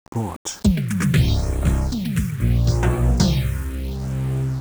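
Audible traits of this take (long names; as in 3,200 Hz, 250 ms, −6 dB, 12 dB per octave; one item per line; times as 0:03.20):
a quantiser's noise floor 6 bits, dither none
phaser sweep stages 4, 0.76 Hz, lowest notch 650–4,800 Hz
IMA ADPCM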